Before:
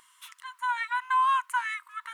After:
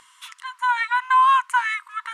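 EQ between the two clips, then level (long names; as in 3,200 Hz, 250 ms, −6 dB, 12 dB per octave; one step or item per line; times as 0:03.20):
low-pass filter 8,600 Hz 12 dB per octave
mains-hum notches 60/120/180/240/300/360/420 Hz
+8.0 dB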